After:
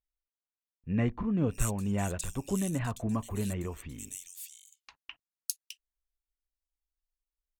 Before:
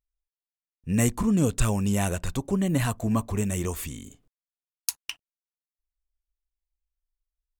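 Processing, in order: tremolo 2 Hz, depth 29%; bands offset in time lows, highs 610 ms, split 3 kHz; trim -5 dB

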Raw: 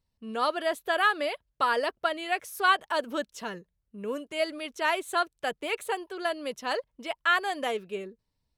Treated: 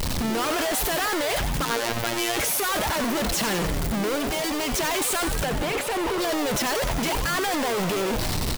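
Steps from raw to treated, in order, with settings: one-bit comparator; 1.65–2.37 s: robot voice 116 Hz; 5.45–6.19 s: treble shelf 4.3 kHz -9.5 dB; in parallel at -11 dB: bit crusher 4-bit; 4.16–4.73 s: on the sum: hard clipper -32 dBFS, distortion -27 dB; on a send: frequency-shifting echo 91 ms, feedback 62%, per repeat +120 Hz, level -9.5 dB; on the sum: trim +5 dB

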